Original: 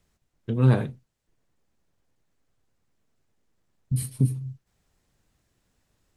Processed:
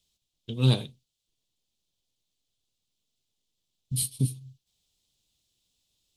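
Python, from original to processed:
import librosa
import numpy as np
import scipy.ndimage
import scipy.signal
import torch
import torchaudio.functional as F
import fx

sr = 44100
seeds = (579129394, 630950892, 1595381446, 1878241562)

y = fx.high_shelf_res(x, sr, hz=2400.0, db=12.5, q=3.0)
y = fx.upward_expand(y, sr, threshold_db=-35.0, expansion=1.5)
y = y * 10.0 ** (-2.5 / 20.0)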